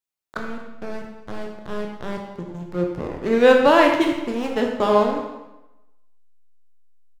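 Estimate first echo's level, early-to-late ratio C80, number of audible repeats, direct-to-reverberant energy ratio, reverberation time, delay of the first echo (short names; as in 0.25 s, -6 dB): -20.0 dB, 6.0 dB, 1, 1.0 dB, 0.95 s, 0.24 s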